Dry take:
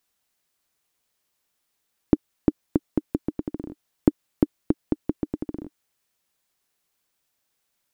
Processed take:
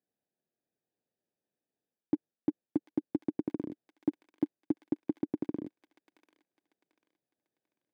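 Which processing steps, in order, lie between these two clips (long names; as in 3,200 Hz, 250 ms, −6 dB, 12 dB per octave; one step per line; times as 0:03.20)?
adaptive Wiener filter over 41 samples
high-pass filter 110 Hz
reversed playback
downward compressor, threshold −26 dBFS, peak gain reduction 14.5 dB
reversed playback
notch comb filter 1,400 Hz
on a send: delay with a high-pass on its return 743 ms, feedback 31%, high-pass 2,300 Hz, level −3 dB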